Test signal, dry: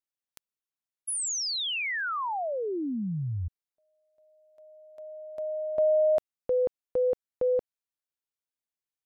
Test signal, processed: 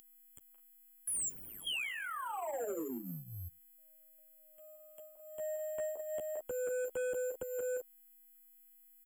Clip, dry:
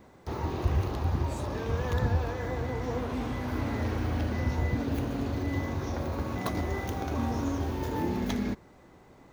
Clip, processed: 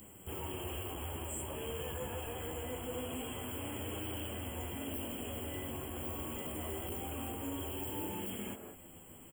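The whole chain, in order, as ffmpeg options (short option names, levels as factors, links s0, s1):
-filter_complex "[0:a]acrossover=split=400|1600[s0][s1][s2];[s0]acompressor=threshold=0.00562:ratio=8:release=114:knee=1[s3];[s1]aecho=1:1:172|209.9:0.631|0.355[s4];[s3][s4][s2]amix=inputs=3:normalize=0,flanger=delay=9.9:depth=3.9:regen=-6:speed=0.25:shape=triangular,aexciter=amount=10.8:drive=8.3:freq=3000,equalizer=f=11000:w=2.2:g=-9.5,acrusher=bits=8:mode=log:mix=0:aa=0.000001,aeval=exprs='val(0)+0.0251*sin(2*PI*6300*n/s)':c=same,acrossover=split=400[s5][s6];[s6]acompressor=threshold=0.0112:ratio=5:attack=0.22:release=29:knee=2.83:detection=peak[s7];[s5][s7]amix=inputs=2:normalize=0,asoftclip=type=hard:threshold=0.0119,afftfilt=real='re*(1-between(b*sr/4096,3300,7100))':imag='im*(1-between(b*sr/4096,3300,7100))':win_size=4096:overlap=0.75,volume=1.68"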